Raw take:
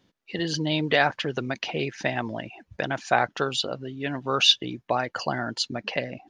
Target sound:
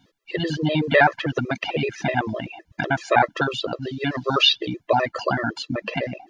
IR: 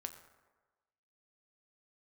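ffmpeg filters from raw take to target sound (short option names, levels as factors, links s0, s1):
-filter_complex "[0:a]asettb=1/sr,asplit=3[s0][s1][s2];[s0]atrim=end=3.824[s3];[s1]atrim=start=3.82:end=4.69,asetpts=PTS-STARTPTS,afade=t=in:d=0.004:c=qsin,afade=t=out:st=0.866:d=0.004:c=qsin,equalizer=f=4700:w=1.3:g=14[s4];[s2]atrim=start=4.686[s5];[s3][s4]acrossfade=d=0.004:c1=hsin:c2=qsin[s6];[s6][s5]acrossfade=d=0.004:c1=qsin:c2=hsin,acrossover=split=2700[s7][s8];[s8]acompressor=threshold=0.00891:ratio=4:attack=1:release=60[s9];[s7][s9]amix=inputs=2:normalize=0,afftfilt=real='re*gt(sin(2*PI*7.9*pts/sr)*(1-2*mod(floor(b*sr/1024/340),2)),0)':imag='im*gt(sin(2*PI*7.9*pts/sr)*(1-2*mod(floor(b*sr/1024/340),2)),0)':win_size=1024:overlap=0.75,volume=2.66"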